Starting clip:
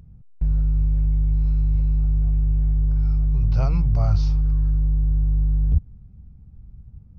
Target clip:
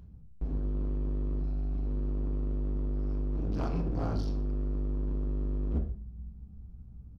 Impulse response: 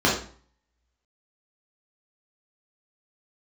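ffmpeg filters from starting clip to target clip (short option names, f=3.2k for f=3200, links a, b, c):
-filter_complex "[0:a]bandreject=f=47.95:t=h:w=4,bandreject=f=95.9:t=h:w=4,bandreject=f=143.85:t=h:w=4,bandreject=f=191.8:t=h:w=4,bandreject=f=239.75:t=h:w=4,bandreject=f=287.7:t=h:w=4,bandreject=f=335.65:t=h:w=4,bandreject=f=383.6:t=h:w=4,bandreject=f=431.55:t=h:w=4,bandreject=f=479.5:t=h:w=4,asettb=1/sr,asplit=3[a][b][c];[a]atrim=end=1.404[d];[b]atrim=start=1.4:end=1.86,asetpts=PTS-STARTPTS,afade=t=in:d=0.004:c=qsin,afade=t=out:st=0.456:d=0.004:c=qsin,equalizer=f=150:t=o:w=1.4:g=-7[e];[c]atrim=start=1.856[f];[d][e]acrossfade=d=0.004:c1=hsin:c2=qsin[g];[g][f]acrossfade=d=0.004:c1=qsin:c2=hsin,volume=24dB,asoftclip=hard,volume=-24dB,aecho=1:1:123:0.0794,asplit=2[h][i];[1:a]atrim=start_sample=2205[j];[i][j]afir=irnorm=-1:irlink=0,volume=-20dB[k];[h][k]amix=inputs=2:normalize=0,volume=-5dB"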